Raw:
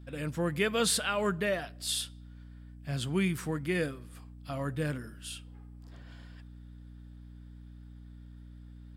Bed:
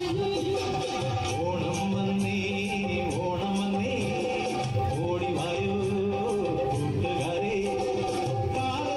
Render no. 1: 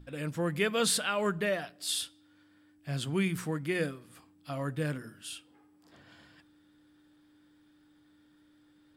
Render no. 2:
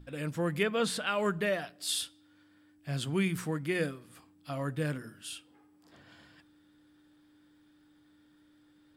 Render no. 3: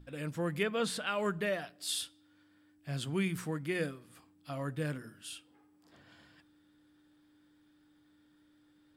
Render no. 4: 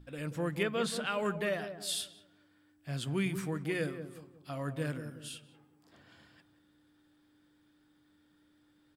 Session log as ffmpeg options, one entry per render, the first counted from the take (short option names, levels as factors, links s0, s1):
-af "bandreject=f=60:t=h:w=6,bandreject=f=120:t=h:w=6,bandreject=f=180:t=h:w=6,bandreject=f=240:t=h:w=6"
-filter_complex "[0:a]asettb=1/sr,asplit=3[s0][s1][s2];[s0]atrim=end=0.634[s3];[s1]atrim=start=0.63:end=1.07,asetpts=PTS-STARTPTS,afade=t=in:d=0.004:c=qsin,afade=t=out:st=0.436:d=0.004:c=qsin,highshelf=f=3900:g=-11.5[s4];[s2]atrim=start=1.066[s5];[s3][s4]acrossfade=d=0.004:c1=hsin:c2=qsin[s6];[s6][s5]acrossfade=d=0.004:c1=qsin:c2=hsin"
-af "volume=0.708"
-filter_complex "[0:a]asplit=2[s0][s1];[s1]adelay=182,lowpass=f=830:p=1,volume=0.398,asplit=2[s2][s3];[s3]adelay=182,lowpass=f=830:p=1,volume=0.42,asplit=2[s4][s5];[s5]adelay=182,lowpass=f=830:p=1,volume=0.42,asplit=2[s6][s7];[s7]adelay=182,lowpass=f=830:p=1,volume=0.42,asplit=2[s8][s9];[s9]adelay=182,lowpass=f=830:p=1,volume=0.42[s10];[s0][s2][s4][s6][s8][s10]amix=inputs=6:normalize=0"